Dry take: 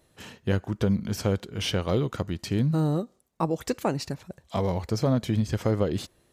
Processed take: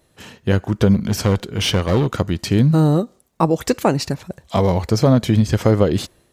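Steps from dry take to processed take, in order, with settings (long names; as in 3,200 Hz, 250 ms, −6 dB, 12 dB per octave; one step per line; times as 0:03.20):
automatic gain control gain up to 6 dB
0:00.94–0:02.08: asymmetric clip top −19.5 dBFS
level +4 dB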